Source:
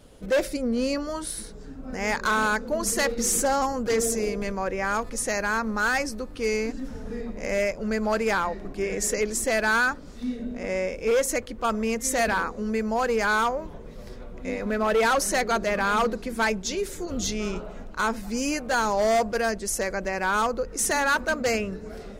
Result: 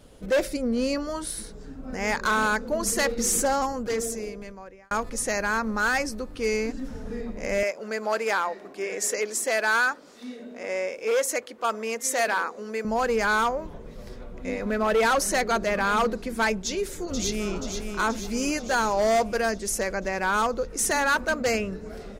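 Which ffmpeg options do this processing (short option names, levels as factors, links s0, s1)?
-filter_complex "[0:a]asettb=1/sr,asplit=3[s0][s1][s2];[s0]atrim=end=7.634[s3];[s1]atrim=start=7.63:end=12.85,asetpts=PTS-STARTPTS,afade=t=in:d=0.004:c=qsin,afade=t=out:st=5.216:d=0.004:c=qsin,highpass=400[s4];[s2]atrim=start=12.846[s5];[s3][s4]acrossfade=d=0.004:c1=hsin:c2=qsin[s6];[s6][s5]acrossfade=d=0.004:c1=qsin:c2=hsin,asplit=2[s7][s8];[s8]afade=t=in:st=16.65:d=0.01,afade=t=out:st=17.55:d=0.01,aecho=0:1:480|960|1440|1920|2400|2880|3360|3840|4320:0.473151|0.307548|0.199906|0.129939|0.0844605|0.0548993|0.0356845|0.023195|0.0150767[s9];[s7][s9]amix=inputs=2:normalize=0,asplit=2[s10][s11];[s10]atrim=end=4.91,asetpts=PTS-STARTPTS,afade=t=out:st=3.42:d=1.49[s12];[s11]atrim=start=4.91,asetpts=PTS-STARTPTS,afade=t=in:d=0.004:c=hsin[s13];[s12][s13]concat=n=2:v=0:a=1"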